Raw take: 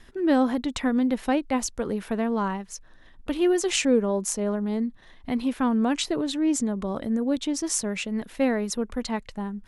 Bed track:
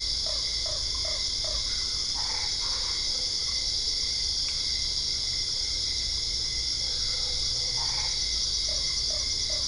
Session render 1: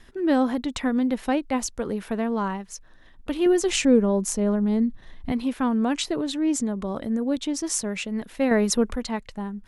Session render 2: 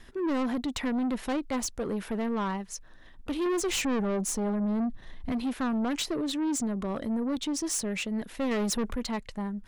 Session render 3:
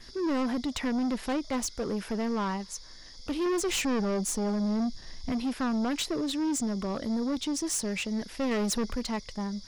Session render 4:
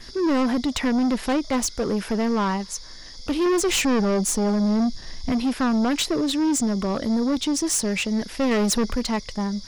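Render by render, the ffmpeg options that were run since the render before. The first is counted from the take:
-filter_complex "[0:a]asettb=1/sr,asplit=3[s0][s1][s2];[s0]atrim=end=3.464[s3];[s1]atrim=start=3.46:end=5.32,asetpts=PTS-STARTPTS,afade=t=in:d=0.004:c=qsin,afade=t=out:st=1.856:d=0.004:c=qsin,lowshelf=f=210:g=10.5[s4];[s2]atrim=start=5.316[s5];[s3][s4]acrossfade=d=0.004:c1=hsin:c2=qsin[s6];[s6][s5]acrossfade=d=0.004:c1=qsin:c2=hsin,asettb=1/sr,asplit=3[s7][s8][s9];[s7]atrim=end=8.514[s10];[s8]atrim=start=8.51:end=8.96,asetpts=PTS-STARTPTS,afade=t=in:d=0.004:c=qsin,afade=t=out:st=0.446:d=0.004:c=qsin,acontrast=72[s11];[s9]atrim=start=8.956[s12];[s10][s11]acrossfade=d=0.004:c1=hsin:c2=qsin[s13];[s13][s12]acrossfade=d=0.004:c1=qsin:c2=hsin"
-af "asoftclip=type=tanh:threshold=0.0531"
-filter_complex "[1:a]volume=0.075[s0];[0:a][s0]amix=inputs=2:normalize=0"
-af "volume=2.37"

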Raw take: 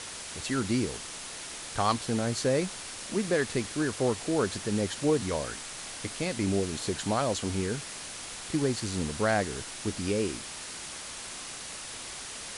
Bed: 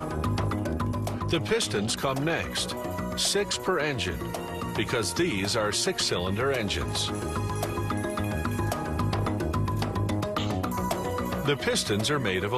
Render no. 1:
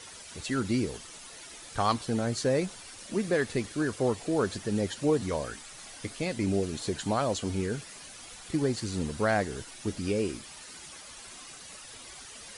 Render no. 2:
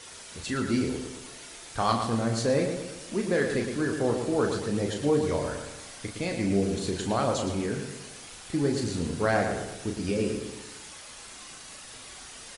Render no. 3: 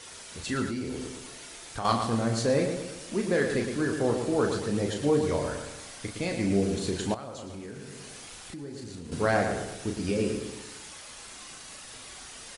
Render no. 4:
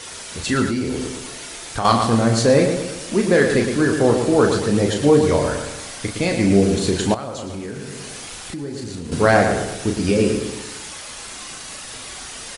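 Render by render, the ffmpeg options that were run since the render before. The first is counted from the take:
-af "afftdn=nr=10:nf=-41"
-filter_complex "[0:a]asplit=2[s0][s1];[s1]adelay=35,volume=0.501[s2];[s0][s2]amix=inputs=2:normalize=0,asplit=2[s3][s4];[s4]adelay=113,lowpass=f=3700:p=1,volume=0.501,asplit=2[s5][s6];[s6]adelay=113,lowpass=f=3700:p=1,volume=0.5,asplit=2[s7][s8];[s8]adelay=113,lowpass=f=3700:p=1,volume=0.5,asplit=2[s9][s10];[s10]adelay=113,lowpass=f=3700:p=1,volume=0.5,asplit=2[s11][s12];[s12]adelay=113,lowpass=f=3700:p=1,volume=0.5,asplit=2[s13][s14];[s14]adelay=113,lowpass=f=3700:p=1,volume=0.5[s15];[s3][s5][s7][s9][s11][s13][s15]amix=inputs=7:normalize=0"
-filter_complex "[0:a]asettb=1/sr,asplit=3[s0][s1][s2];[s0]atrim=end=0.684[s3];[s1]atrim=start=0.68:end=1.85,asetpts=PTS-STARTPTS,afade=t=in:d=0.004:c=qsin,afade=t=out:st=1.166:d=0.004:c=qsin,acompressor=threshold=0.0316:ratio=4:attack=3.2:release=140:knee=1:detection=peak[s4];[s2]atrim=start=1.846[s5];[s3][s4]acrossfade=d=0.004:c1=hsin:c2=qsin[s6];[s6][s5]acrossfade=d=0.004:c1=qsin:c2=hsin,asettb=1/sr,asplit=3[s7][s8][s9];[s7]atrim=end=7.144[s10];[s8]atrim=start=7.14:end=9.12,asetpts=PTS-STARTPTS,afade=t=in:d=0.004:c=qsin,afade=t=out:st=1.976:d=0.004:c=qsin,acompressor=threshold=0.0112:ratio=4:attack=3.2:release=140:knee=1:detection=peak[s11];[s9]atrim=start=9.116[s12];[s10][s11]acrossfade=d=0.004:c1=hsin:c2=qsin[s13];[s13][s12]acrossfade=d=0.004:c1=qsin:c2=hsin"
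-af "volume=3.35,alimiter=limit=0.794:level=0:latency=1"

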